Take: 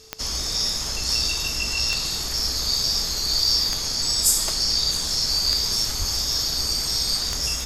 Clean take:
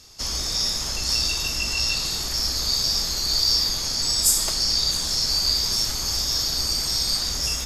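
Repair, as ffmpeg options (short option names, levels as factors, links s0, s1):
-filter_complex "[0:a]adeclick=t=4,bandreject=f=440:w=30,asplit=3[s0][s1][s2];[s0]afade=t=out:st=5.98:d=0.02[s3];[s1]highpass=f=140:w=0.5412,highpass=f=140:w=1.3066,afade=t=in:st=5.98:d=0.02,afade=t=out:st=6.1:d=0.02[s4];[s2]afade=t=in:st=6.1:d=0.02[s5];[s3][s4][s5]amix=inputs=3:normalize=0"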